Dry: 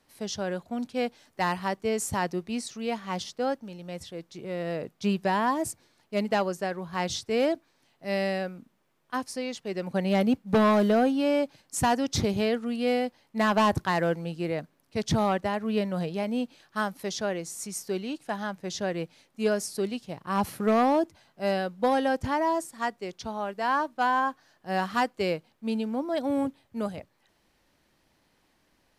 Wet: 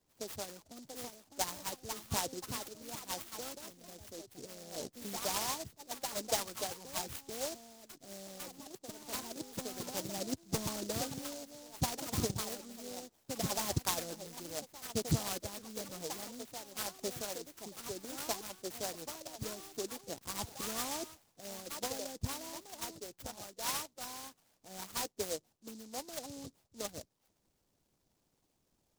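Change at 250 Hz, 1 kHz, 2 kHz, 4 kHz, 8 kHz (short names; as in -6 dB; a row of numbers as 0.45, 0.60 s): -17.0, -15.5, -14.5, -4.0, +0.5 dB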